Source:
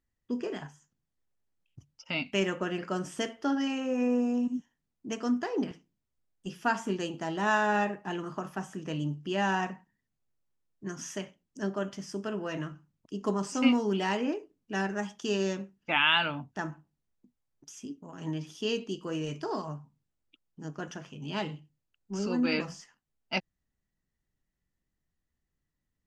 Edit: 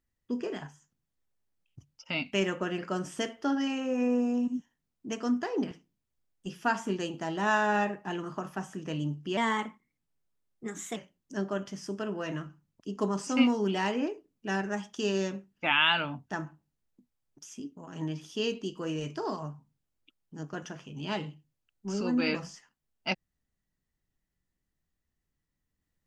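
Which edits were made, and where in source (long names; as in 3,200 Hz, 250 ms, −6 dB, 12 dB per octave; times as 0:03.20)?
0:09.37–0:11.22: play speed 116%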